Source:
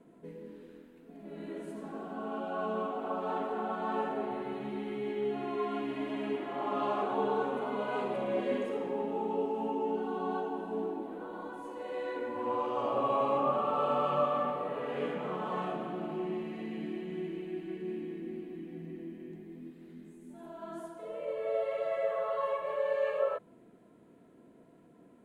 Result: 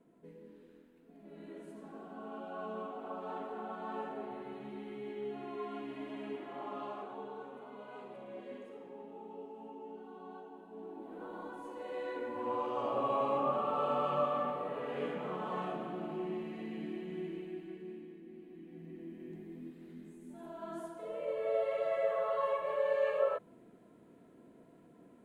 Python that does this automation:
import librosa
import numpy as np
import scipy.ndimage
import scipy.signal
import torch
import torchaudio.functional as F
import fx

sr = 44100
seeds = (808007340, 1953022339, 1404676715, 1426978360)

y = fx.gain(x, sr, db=fx.line((6.57, -7.5), (7.3, -15.0), (10.71, -15.0), (11.25, -3.0), (17.36, -3.0), (18.24, -12.0), (19.39, -0.5)))